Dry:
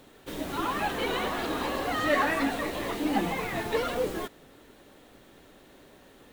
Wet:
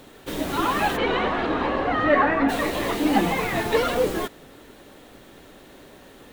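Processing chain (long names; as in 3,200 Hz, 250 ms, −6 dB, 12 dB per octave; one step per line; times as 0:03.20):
0:00.96–0:02.48: low-pass filter 3,300 Hz → 1,700 Hz 12 dB per octave
level +7 dB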